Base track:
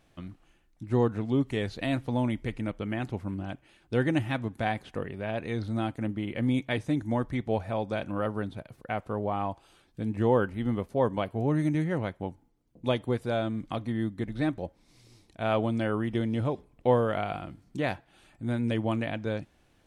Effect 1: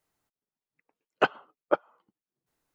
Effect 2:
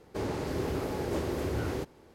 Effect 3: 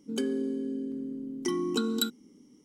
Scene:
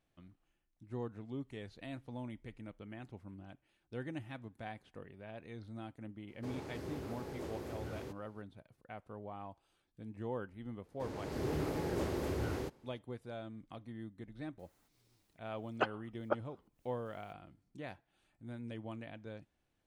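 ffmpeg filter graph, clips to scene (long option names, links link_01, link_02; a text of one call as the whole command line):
ffmpeg -i bed.wav -i cue0.wav -i cue1.wav -filter_complex "[2:a]asplit=2[link_01][link_02];[0:a]volume=-16.5dB[link_03];[link_01]highpass=56[link_04];[link_02]dynaudnorm=framelen=180:gausssize=5:maxgain=8.5dB[link_05];[1:a]acompressor=mode=upward:threshold=-48dB:ratio=2.5:attack=3.2:release=140:knee=2.83:detection=peak[link_06];[link_04]atrim=end=2.14,asetpts=PTS-STARTPTS,volume=-12dB,afade=type=in:duration=0.004:curve=hsin,afade=type=out:start_time=2.136:duration=0.004:curve=hsin,adelay=6280[link_07];[link_05]atrim=end=2.14,asetpts=PTS-STARTPTS,volume=-13dB,afade=type=in:duration=0.004:curve=hsin,afade=type=out:start_time=2.136:duration=0.004:curve=hsin,adelay=10850[link_08];[link_06]atrim=end=2.74,asetpts=PTS-STARTPTS,volume=-10dB,afade=type=in:duration=0.004:curve=hsin,afade=type=out:start_time=2.736:duration=0.004:curve=hsin,adelay=14590[link_09];[link_03][link_07][link_08][link_09]amix=inputs=4:normalize=0" out.wav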